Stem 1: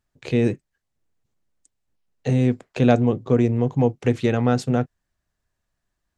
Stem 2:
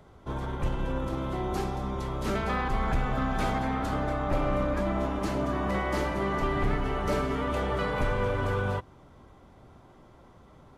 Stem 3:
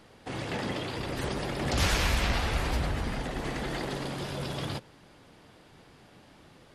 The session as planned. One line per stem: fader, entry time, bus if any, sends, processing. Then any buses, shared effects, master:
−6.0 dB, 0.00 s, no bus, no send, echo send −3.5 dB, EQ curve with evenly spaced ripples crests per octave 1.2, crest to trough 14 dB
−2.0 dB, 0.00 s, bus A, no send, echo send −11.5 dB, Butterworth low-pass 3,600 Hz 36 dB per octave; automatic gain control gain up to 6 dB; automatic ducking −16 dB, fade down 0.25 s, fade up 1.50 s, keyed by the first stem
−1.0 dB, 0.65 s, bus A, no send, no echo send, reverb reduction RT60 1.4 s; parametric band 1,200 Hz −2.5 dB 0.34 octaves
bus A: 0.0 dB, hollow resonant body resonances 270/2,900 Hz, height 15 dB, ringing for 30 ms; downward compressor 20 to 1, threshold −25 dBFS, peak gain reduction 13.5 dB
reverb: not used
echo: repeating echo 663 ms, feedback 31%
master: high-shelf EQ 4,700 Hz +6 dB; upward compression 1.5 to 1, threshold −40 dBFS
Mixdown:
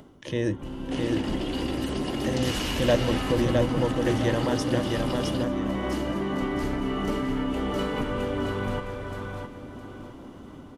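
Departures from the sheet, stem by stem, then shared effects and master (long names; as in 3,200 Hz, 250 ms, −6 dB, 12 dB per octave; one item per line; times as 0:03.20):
stem 2: missing Butterworth low-pass 3,600 Hz 36 dB per octave
stem 3: missing reverb reduction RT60 1.4 s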